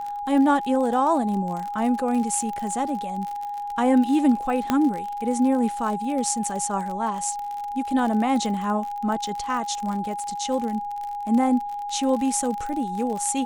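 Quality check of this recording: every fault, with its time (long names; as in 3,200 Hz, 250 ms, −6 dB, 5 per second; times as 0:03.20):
surface crackle 56 per second −29 dBFS
whistle 820 Hz −28 dBFS
0:04.70: click −8 dBFS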